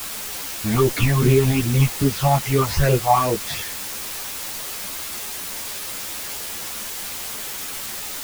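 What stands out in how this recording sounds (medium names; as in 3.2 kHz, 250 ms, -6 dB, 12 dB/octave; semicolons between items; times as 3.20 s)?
phasing stages 8, 2.5 Hz, lowest notch 370–1200 Hz; a quantiser's noise floor 6-bit, dither triangular; a shimmering, thickened sound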